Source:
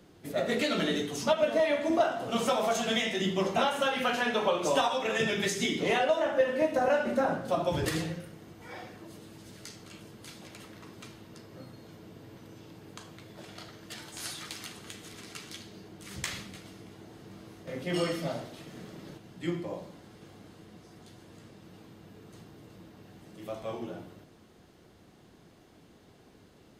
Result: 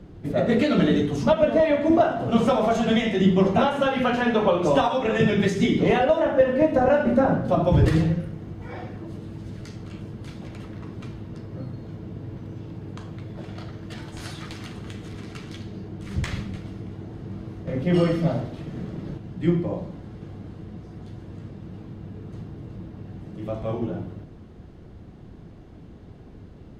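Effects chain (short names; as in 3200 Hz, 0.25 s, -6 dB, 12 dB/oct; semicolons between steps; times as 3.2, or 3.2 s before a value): RIAA curve playback; gain +5 dB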